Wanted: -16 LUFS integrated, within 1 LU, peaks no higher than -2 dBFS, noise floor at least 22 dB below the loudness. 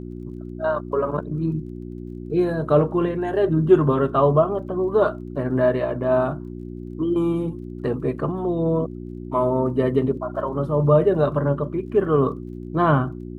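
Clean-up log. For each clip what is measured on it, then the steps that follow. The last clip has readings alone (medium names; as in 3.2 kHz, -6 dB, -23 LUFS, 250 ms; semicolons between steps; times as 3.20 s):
tick rate 22 per s; hum 60 Hz; highest harmonic 360 Hz; hum level -31 dBFS; loudness -21.5 LUFS; peak level -3.5 dBFS; loudness target -16.0 LUFS
-> de-click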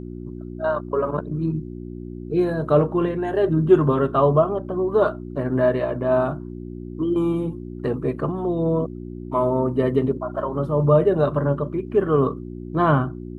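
tick rate 0.075 per s; hum 60 Hz; highest harmonic 360 Hz; hum level -31 dBFS
-> de-hum 60 Hz, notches 6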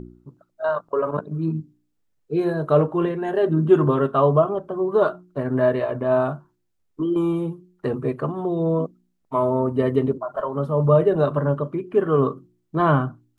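hum not found; loudness -22.0 LUFS; peak level -4.5 dBFS; loudness target -16.0 LUFS
-> trim +6 dB; peak limiter -2 dBFS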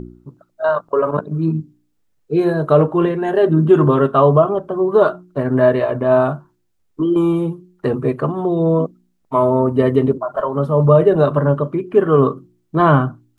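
loudness -16.5 LUFS; peak level -2.0 dBFS; noise floor -65 dBFS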